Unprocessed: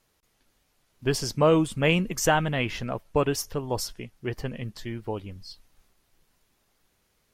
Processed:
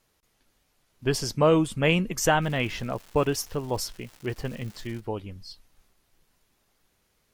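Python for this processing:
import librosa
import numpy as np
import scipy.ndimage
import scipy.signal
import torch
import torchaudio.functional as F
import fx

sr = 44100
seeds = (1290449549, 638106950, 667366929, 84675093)

y = fx.dmg_crackle(x, sr, seeds[0], per_s=380.0, level_db=-38.0, at=(2.41, 4.99), fade=0.02)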